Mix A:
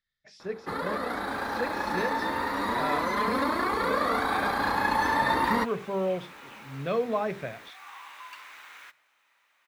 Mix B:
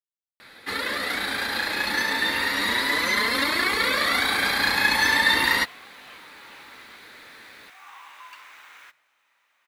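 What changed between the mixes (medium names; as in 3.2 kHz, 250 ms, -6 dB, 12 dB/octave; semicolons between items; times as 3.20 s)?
speech: muted; first sound: add resonant high shelf 1.6 kHz +13.5 dB, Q 1.5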